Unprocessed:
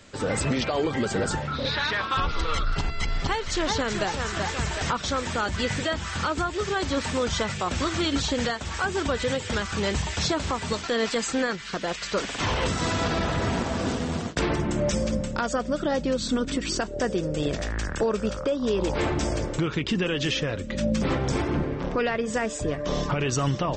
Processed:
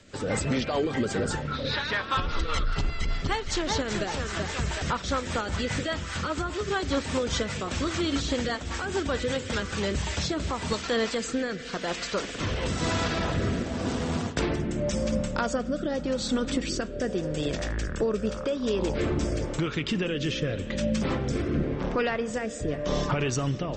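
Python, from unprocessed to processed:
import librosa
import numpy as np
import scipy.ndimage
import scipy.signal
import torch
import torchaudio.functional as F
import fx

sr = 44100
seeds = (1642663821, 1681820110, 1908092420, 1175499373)

y = fx.rev_spring(x, sr, rt60_s=3.8, pass_ms=(32, 52), chirp_ms=70, drr_db=13.5)
y = fx.rotary_switch(y, sr, hz=5.0, then_hz=0.9, switch_at_s=9.5)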